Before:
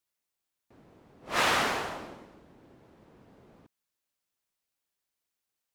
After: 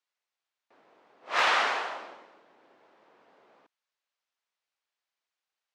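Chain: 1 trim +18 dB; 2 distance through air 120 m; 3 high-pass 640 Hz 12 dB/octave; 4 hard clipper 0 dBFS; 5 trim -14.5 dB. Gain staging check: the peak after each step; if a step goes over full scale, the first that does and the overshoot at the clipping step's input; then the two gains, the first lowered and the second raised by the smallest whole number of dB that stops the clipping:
+5.5 dBFS, +4.0 dBFS, +3.5 dBFS, 0.0 dBFS, -14.5 dBFS; step 1, 3.5 dB; step 1 +14 dB, step 5 -10.5 dB

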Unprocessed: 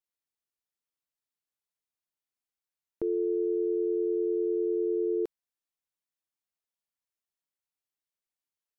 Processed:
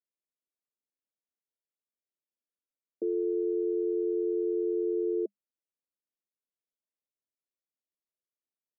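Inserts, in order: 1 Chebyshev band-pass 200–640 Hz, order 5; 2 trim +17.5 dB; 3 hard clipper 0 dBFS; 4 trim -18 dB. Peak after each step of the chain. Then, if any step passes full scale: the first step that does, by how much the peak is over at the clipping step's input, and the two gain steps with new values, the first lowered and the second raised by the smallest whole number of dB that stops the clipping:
-22.5 dBFS, -5.0 dBFS, -5.0 dBFS, -23.0 dBFS; nothing clips

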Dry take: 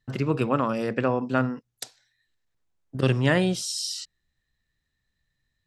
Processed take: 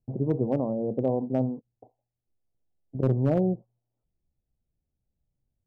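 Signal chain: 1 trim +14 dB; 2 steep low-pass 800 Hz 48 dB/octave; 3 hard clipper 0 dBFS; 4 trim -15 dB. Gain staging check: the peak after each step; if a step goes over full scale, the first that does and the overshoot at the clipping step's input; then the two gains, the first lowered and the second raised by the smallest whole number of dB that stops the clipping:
+6.0 dBFS, +4.0 dBFS, 0.0 dBFS, -15.0 dBFS; step 1, 4.0 dB; step 1 +10 dB, step 4 -11 dB

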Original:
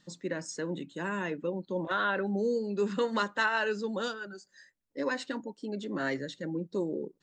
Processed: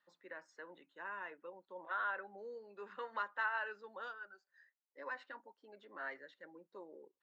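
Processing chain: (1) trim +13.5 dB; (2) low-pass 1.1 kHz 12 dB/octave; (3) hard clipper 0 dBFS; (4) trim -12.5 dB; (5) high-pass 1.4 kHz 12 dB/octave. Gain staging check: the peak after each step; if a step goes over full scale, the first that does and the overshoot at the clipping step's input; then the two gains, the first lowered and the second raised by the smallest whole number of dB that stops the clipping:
-2.5 dBFS, -5.5 dBFS, -5.5 dBFS, -18.0 dBFS, -25.5 dBFS; nothing clips

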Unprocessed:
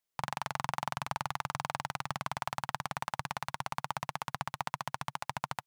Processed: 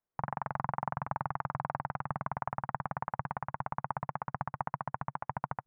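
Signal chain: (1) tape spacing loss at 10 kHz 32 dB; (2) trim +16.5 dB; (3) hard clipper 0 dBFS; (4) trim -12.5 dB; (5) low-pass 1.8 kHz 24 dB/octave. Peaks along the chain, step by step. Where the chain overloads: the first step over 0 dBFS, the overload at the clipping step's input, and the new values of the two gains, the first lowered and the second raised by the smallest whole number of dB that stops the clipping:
-19.5 dBFS, -3.0 dBFS, -3.0 dBFS, -15.5 dBFS, -17.0 dBFS; nothing clips

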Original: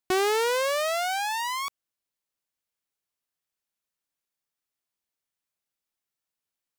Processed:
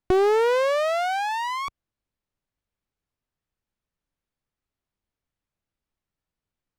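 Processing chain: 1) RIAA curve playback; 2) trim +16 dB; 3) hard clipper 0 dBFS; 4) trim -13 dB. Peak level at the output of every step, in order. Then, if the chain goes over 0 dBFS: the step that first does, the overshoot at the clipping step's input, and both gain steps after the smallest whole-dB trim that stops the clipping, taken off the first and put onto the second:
-12.0 dBFS, +4.0 dBFS, 0.0 dBFS, -13.0 dBFS; step 2, 4.0 dB; step 2 +12 dB, step 4 -9 dB

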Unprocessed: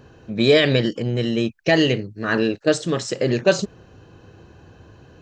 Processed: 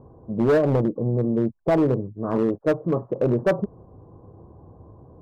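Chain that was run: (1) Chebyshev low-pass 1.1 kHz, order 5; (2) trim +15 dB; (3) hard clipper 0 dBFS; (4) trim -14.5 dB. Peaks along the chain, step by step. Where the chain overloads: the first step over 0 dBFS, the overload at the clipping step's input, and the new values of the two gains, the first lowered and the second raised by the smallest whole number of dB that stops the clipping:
-6.0 dBFS, +9.0 dBFS, 0.0 dBFS, -14.5 dBFS; step 2, 9.0 dB; step 2 +6 dB, step 4 -5.5 dB

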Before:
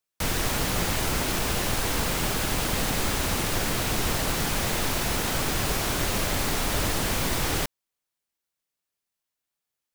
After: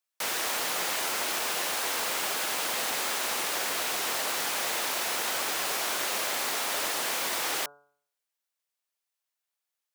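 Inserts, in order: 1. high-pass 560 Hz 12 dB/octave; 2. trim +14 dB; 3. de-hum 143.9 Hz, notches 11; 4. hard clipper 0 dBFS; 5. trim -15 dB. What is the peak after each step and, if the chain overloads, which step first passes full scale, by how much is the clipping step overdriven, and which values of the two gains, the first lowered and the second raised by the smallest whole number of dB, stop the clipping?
-16.0 dBFS, -2.0 dBFS, -2.0 dBFS, -2.0 dBFS, -17.0 dBFS; nothing clips

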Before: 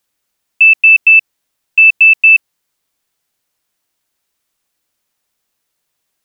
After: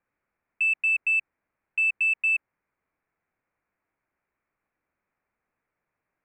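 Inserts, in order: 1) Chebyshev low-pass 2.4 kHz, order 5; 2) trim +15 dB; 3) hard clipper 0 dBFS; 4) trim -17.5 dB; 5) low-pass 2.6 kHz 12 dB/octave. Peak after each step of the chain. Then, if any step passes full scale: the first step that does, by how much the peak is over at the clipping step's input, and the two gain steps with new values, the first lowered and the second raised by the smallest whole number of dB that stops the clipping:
-9.5 dBFS, +5.5 dBFS, 0.0 dBFS, -17.5 dBFS, -19.0 dBFS; step 2, 5.5 dB; step 2 +9 dB, step 4 -11.5 dB

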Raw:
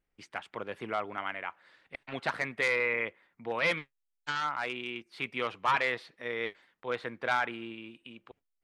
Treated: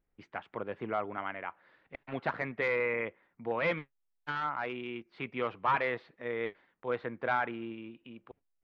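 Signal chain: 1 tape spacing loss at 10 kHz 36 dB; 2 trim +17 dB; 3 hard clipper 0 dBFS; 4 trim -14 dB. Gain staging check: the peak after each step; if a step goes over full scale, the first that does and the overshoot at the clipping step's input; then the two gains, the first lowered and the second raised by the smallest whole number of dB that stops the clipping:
-21.5 dBFS, -4.5 dBFS, -4.5 dBFS, -18.5 dBFS; nothing clips

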